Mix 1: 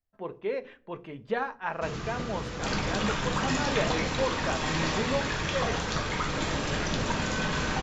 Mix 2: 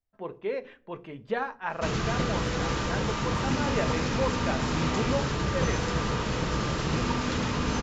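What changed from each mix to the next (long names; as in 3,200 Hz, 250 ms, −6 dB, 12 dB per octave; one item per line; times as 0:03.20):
first sound +7.5 dB
second sound: add pair of resonant band-passes 680 Hz, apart 0.84 octaves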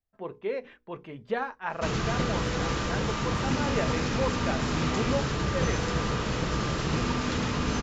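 reverb: off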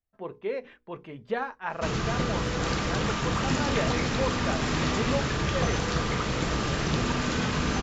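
second sound: remove pair of resonant band-passes 680 Hz, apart 0.84 octaves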